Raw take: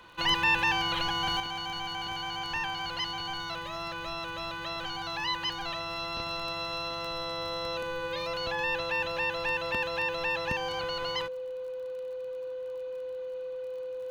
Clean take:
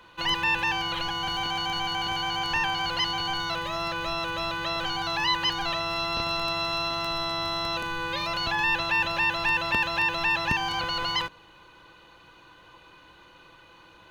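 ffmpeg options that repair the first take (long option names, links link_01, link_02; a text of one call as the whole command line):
ffmpeg -i in.wav -af "adeclick=threshold=4,bandreject=frequency=510:width=30,asetnsamples=nb_out_samples=441:pad=0,asendcmd='1.4 volume volume 6.5dB',volume=0dB" out.wav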